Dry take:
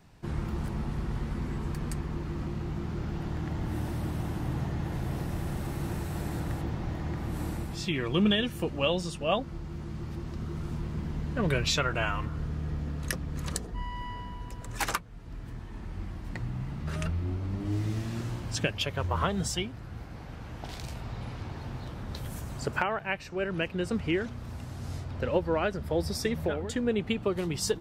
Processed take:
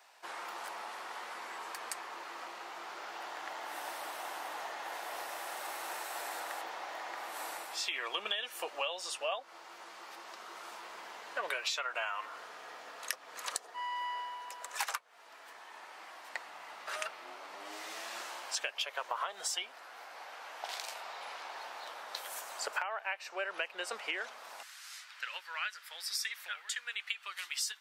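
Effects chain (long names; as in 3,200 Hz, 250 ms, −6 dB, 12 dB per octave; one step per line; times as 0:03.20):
high-pass filter 650 Hz 24 dB per octave, from 0:24.63 1,500 Hz
downward compressor 12 to 1, threshold −36 dBFS, peak gain reduction 13 dB
level +4 dB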